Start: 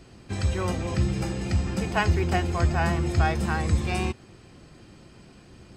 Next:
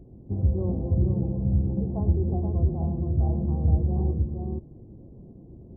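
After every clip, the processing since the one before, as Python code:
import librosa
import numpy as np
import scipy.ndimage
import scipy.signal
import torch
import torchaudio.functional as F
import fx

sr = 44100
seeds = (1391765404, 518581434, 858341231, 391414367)

y = fx.echo_multitap(x, sr, ms=(108, 474), db=(-13.5, -4.5))
y = fx.rider(y, sr, range_db=4, speed_s=2.0)
y = scipy.ndimage.gaussian_filter1d(y, 16.0, mode='constant')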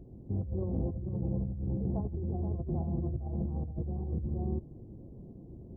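y = fx.over_compress(x, sr, threshold_db=-28.0, ratio=-1.0)
y = F.gain(torch.from_numpy(y), -5.5).numpy()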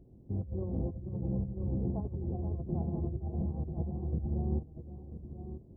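y = x + 10.0 ** (-6.0 / 20.0) * np.pad(x, (int(991 * sr / 1000.0), 0))[:len(x)]
y = fx.upward_expand(y, sr, threshold_db=-42.0, expansion=1.5)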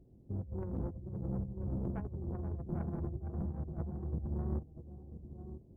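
y = fx.tracing_dist(x, sr, depth_ms=0.38)
y = F.gain(torch.from_numpy(y), -4.0).numpy()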